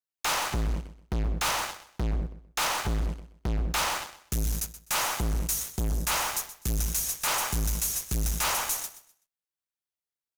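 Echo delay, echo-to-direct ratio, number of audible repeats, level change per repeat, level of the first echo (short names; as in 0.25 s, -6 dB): 0.126 s, -14.0 dB, 2, -11.5 dB, -14.5 dB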